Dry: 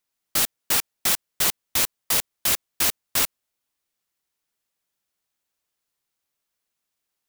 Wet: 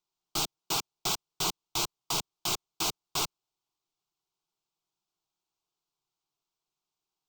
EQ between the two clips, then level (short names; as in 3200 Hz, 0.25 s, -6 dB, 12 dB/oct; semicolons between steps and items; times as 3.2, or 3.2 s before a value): running mean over 4 samples; fixed phaser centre 360 Hz, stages 8; 0.0 dB